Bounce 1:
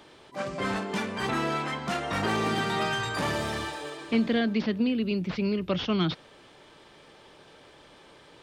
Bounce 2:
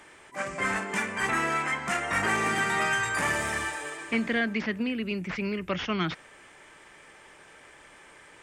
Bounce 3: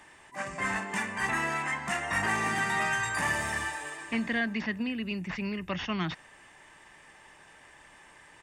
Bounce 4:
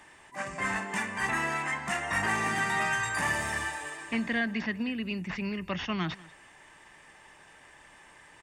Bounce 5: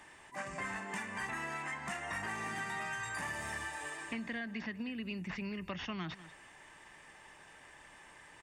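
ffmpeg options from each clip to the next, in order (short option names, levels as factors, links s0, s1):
-af "equalizer=f=125:t=o:w=1:g=-5,equalizer=f=250:t=o:w=1:g=-3,equalizer=f=500:t=o:w=1:g=-3,equalizer=f=2000:t=o:w=1:g=10,equalizer=f=4000:t=o:w=1:g=-11,equalizer=f=8000:t=o:w=1:g=11"
-af "aecho=1:1:1.1:0.4,volume=0.708"
-af "aecho=1:1:193:0.0841"
-af "acompressor=threshold=0.0158:ratio=4,volume=0.794"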